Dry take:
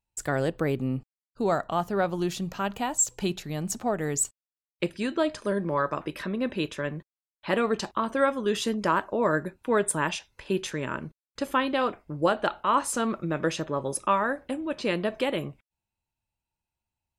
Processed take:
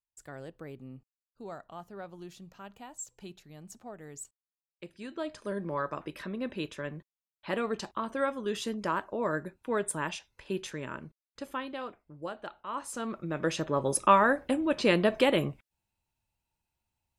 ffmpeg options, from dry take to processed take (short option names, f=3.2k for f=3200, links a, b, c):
-af "volume=11.5dB,afade=t=in:st=4.84:d=0.8:silence=0.281838,afade=t=out:st=10.69:d=1.35:silence=0.375837,afade=t=in:st=12.66:d=0.65:silence=0.334965,afade=t=in:st=13.31:d=0.76:silence=0.375837"